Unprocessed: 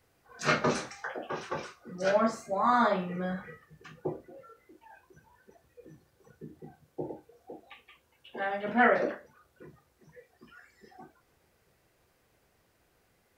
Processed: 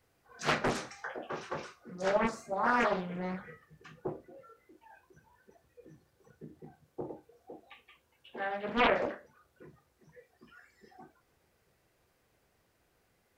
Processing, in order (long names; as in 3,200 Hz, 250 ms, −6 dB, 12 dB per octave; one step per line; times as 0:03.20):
highs frequency-modulated by the lows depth 0.83 ms
level −3 dB